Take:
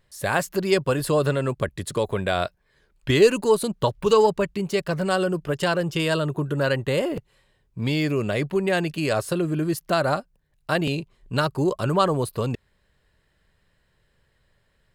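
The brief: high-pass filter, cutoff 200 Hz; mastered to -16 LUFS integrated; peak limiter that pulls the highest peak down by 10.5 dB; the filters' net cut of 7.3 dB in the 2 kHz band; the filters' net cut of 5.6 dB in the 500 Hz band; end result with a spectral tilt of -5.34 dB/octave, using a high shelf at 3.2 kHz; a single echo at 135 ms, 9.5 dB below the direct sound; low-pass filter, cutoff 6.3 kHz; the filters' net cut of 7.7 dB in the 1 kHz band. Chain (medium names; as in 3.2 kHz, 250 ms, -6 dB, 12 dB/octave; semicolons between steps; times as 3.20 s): high-pass 200 Hz; low-pass 6.3 kHz; peaking EQ 500 Hz -5 dB; peaking EQ 1 kHz -6.5 dB; peaking EQ 2 kHz -8.5 dB; treble shelf 3.2 kHz +3 dB; peak limiter -19.5 dBFS; delay 135 ms -9.5 dB; trim +15 dB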